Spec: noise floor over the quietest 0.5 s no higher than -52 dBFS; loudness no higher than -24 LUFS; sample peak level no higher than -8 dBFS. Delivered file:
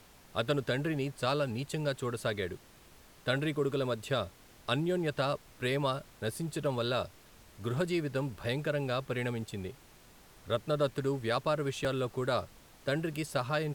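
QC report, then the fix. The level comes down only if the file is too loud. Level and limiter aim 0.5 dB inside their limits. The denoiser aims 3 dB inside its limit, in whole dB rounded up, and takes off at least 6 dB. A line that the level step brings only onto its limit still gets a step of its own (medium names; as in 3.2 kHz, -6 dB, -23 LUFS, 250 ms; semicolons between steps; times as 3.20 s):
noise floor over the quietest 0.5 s -57 dBFS: pass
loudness -33.5 LUFS: pass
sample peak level -16.0 dBFS: pass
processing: none needed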